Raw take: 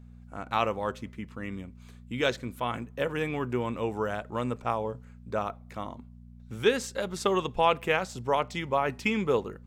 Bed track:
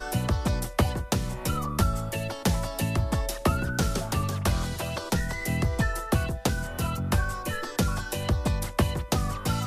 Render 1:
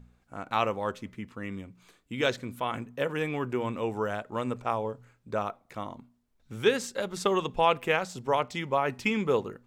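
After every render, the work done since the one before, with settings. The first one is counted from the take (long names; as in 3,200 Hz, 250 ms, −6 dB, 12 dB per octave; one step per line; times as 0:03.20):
hum removal 60 Hz, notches 4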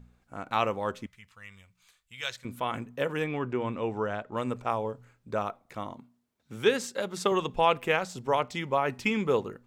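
0:01.06–0:02.45: guitar amp tone stack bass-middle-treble 10-0-10
0:03.24–0:04.37: high-frequency loss of the air 100 metres
0:05.94–0:07.32: high-pass filter 120 Hz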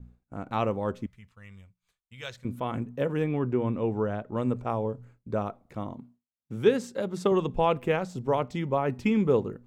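downward expander −55 dBFS
tilt shelving filter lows +7.5 dB, about 650 Hz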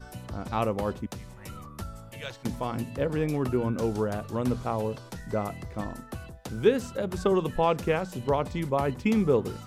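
mix in bed track −14 dB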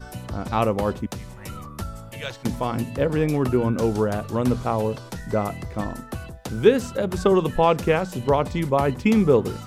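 level +6 dB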